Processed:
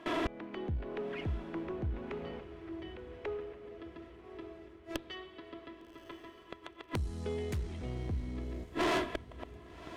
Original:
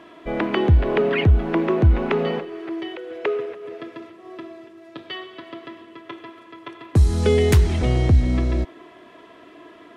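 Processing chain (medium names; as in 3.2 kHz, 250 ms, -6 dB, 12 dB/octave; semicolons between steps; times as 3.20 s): gate with hold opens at -36 dBFS; level rider gain up to 13 dB; dynamic bell 260 Hz, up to +3 dB, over -32 dBFS, Q 1.1; inverted gate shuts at -25 dBFS, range -40 dB; valve stage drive 43 dB, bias 0.4; on a send: echo that smears into a reverb 1159 ms, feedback 54%, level -14.5 dB; on the sum: trim +15.5 dB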